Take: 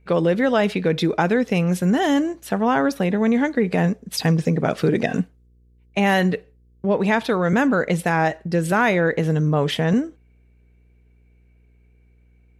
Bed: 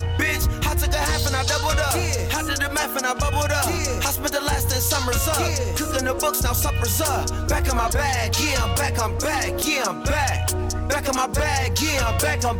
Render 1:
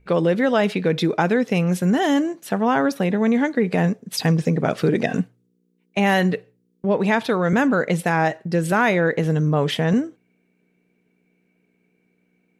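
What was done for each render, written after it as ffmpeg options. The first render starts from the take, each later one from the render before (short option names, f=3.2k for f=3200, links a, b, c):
-af "bandreject=f=60:t=h:w=4,bandreject=f=120:t=h:w=4"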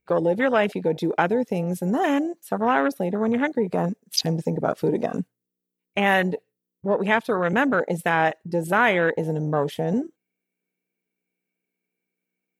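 -af "aemphasis=mode=production:type=bsi,afwtdn=0.0631"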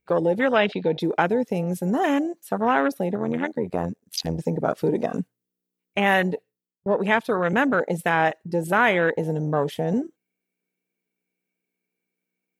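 -filter_complex "[0:a]asettb=1/sr,asplit=3[a][b][c];[a]atrim=end=0.564[d];[b]atrim=start=0.56:end=1,asetpts=PTS-STARTPTS,afade=t=in:d=0.004:c=qsin,afade=t=out:st=0.436:d=0.004:c=qsin,lowpass=f=3.8k:t=q:w=2.7[e];[c]atrim=start=0.996[f];[d][e]acrossfade=d=0.004:c1=hsin:c2=qsin[g];[g][f]acrossfade=d=0.004:c1=qsin:c2=hsin,asplit=3[h][i][j];[h]afade=t=out:st=3.15:d=0.02[k];[i]tremolo=f=85:d=0.788,afade=t=in:st=3.15:d=0.02,afade=t=out:st=4.38:d=0.02[l];[j]afade=t=in:st=4.38:d=0.02[m];[k][l][m]amix=inputs=3:normalize=0,asplit=2[n][o];[n]atrim=end=6.86,asetpts=PTS-STARTPTS,afade=t=out:st=6.34:d=0.52[p];[o]atrim=start=6.86,asetpts=PTS-STARTPTS,afade=t=in:d=0.004:c=hsin[q];[p][q]concat=n=2:v=0:a=1"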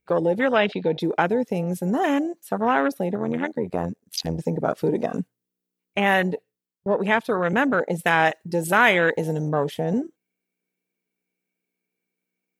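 -filter_complex "[0:a]asettb=1/sr,asplit=3[a][b][c];[a]atrim=end=8.064[d];[b]atrim=start=8.06:end=9.49,asetpts=PTS-STARTPTS,afade=t=in:d=0.004:c=qsin,afade=t=out:st=1.426:d=0.004:c=qsin,highshelf=f=2.2k:g=8.5[e];[c]atrim=start=9.486[f];[d][e]acrossfade=d=0.004:c1=hsin:c2=qsin[g];[g][f]acrossfade=d=0.004:c1=qsin:c2=hsin"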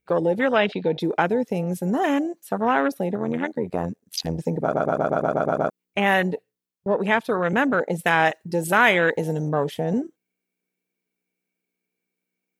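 -filter_complex "[0:a]asplit=10[a][b][c][d][e][f][g][h][i][j];[a]atrim=end=4.742[k];[b]atrim=start=4.618:end=4.742[l];[c]atrim=start=4.618:end=4.742[m];[d]atrim=start=4.618:end=4.742[n];[e]atrim=start=4.618:end=4.742[o];[f]atrim=start=4.618:end=4.742[p];[g]atrim=start=4.618:end=4.742[q];[h]atrim=start=4.618:end=4.742[r];[i]atrim=start=4.618:end=4.742[s];[j]atrim=start=5.698[t];[k][l]acrossfade=d=0.004:c1=hsin:c2=hsin[u];[u][m]acrossfade=d=0.004:c1=hsin:c2=hsin[v];[v][n]acrossfade=d=0.004:c1=hsin:c2=hsin[w];[w][o]acrossfade=d=0.004:c1=hsin:c2=hsin[x];[x][p]acrossfade=d=0.004:c1=hsin:c2=hsin[y];[y][q]acrossfade=d=0.004:c1=hsin:c2=hsin[z];[z][r]acrossfade=d=0.004:c1=hsin:c2=hsin[aa];[aa][s]acrossfade=d=0.004:c1=hsin:c2=hsin[ab];[ab][t]acrossfade=d=0.004:c1=hsin:c2=hsin"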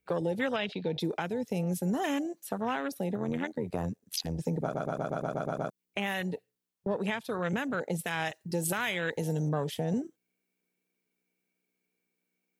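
-filter_complex "[0:a]acrossover=split=140|3000[a][b][c];[b]acompressor=threshold=-37dB:ratio=2[d];[a][d][c]amix=inputs=3:normalize=0,alimiter=limit=-19dB:level=0:latency=1:release=307"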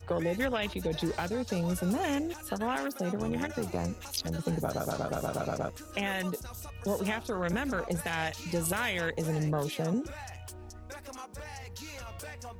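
-filter_complex "[1:a]volume=-22dB[a];[0:a][a]amix=inputs=2:normalize=0"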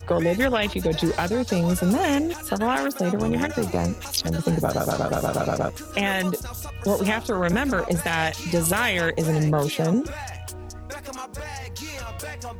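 -af "volume=9dB"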